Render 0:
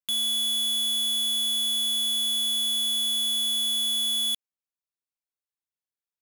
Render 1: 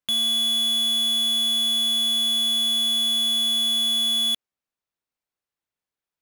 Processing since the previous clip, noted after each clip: treble shelf 4.2 kHz -10.5 dB; trim +8.5 dB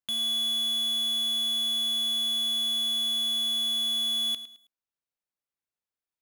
bit-crushed delay 107 ms, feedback 35%, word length 8-bit, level -13 dB; trim -7 dB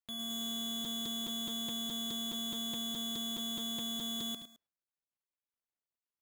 median filter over 15 samples; crackling interface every 0.21 s, samples 256, repeat, from 0.84 s; transformer saturation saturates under 320 Hz

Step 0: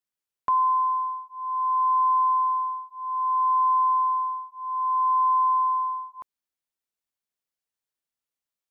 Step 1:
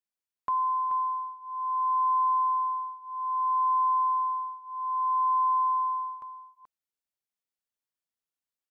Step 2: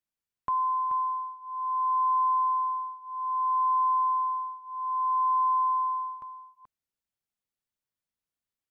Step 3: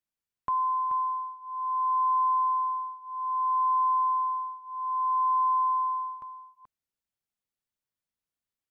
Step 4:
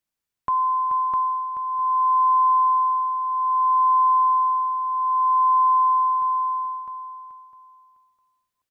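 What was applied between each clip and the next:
delay 431 ms -9 dB; trim -5.5 dB
tone controls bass +8 dB, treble -2 dB
no audible change
feedback delay 655 ms, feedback 20%, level -3.5 dB; trim +5.5 dB

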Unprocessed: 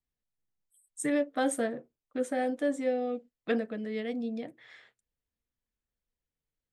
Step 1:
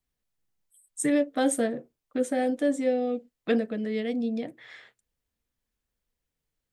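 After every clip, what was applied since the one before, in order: dynamic bell 1.2 kHz, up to -6 dB, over -44 dBFS, Q 0.7; trim +6 dB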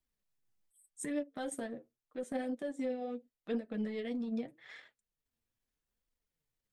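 transient shaper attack -12 dB, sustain -8 dB; compression, threshold -32 dBFS, peak gain reduction 11 dB; flange 0.82 Hz, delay 3 ms, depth 6.8 ms, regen +38%; trim +1 dB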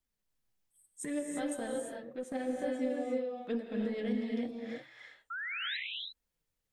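painted sound rise, 5.30–5.77 s, 1.3–4.1 kHz -39 dBFS; gated-style reverb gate 370 ms rising, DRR 0.5 dB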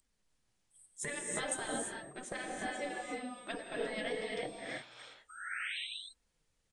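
whistle 8.4 kHz -64 dBFS; resampled via 22.05 kHz; spectral gate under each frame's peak -10 dB weak; trim +7.5 dB

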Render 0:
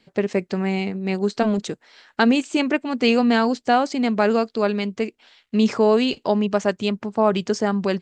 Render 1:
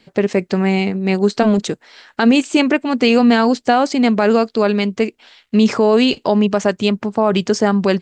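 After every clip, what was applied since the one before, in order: peak limiter -11 dBFS, peak gain reduction 7.5 dB; trim +7 dB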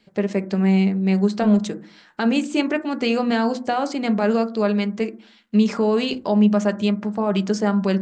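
reverberation RT60 0.45 s, pre-delay 5 ms, DRR 8 dB; trim -8 dB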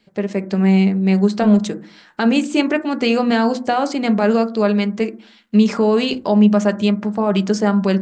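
level rider gain up to 4.5 dB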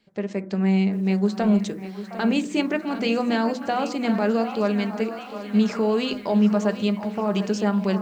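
repeats whose band climbs or falls 712 ms, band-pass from 970 Hz, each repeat 0.7 oct, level -9 dB; bit-crushed delay 750 ms, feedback 55%, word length 7-bit, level -12.5 dB; trim -6.5 dB

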